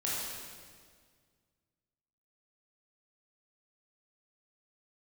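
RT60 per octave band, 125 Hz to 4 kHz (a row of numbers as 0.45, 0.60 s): 2.4, 2.2, 1.9, 1.7, 1.6, 1.6 s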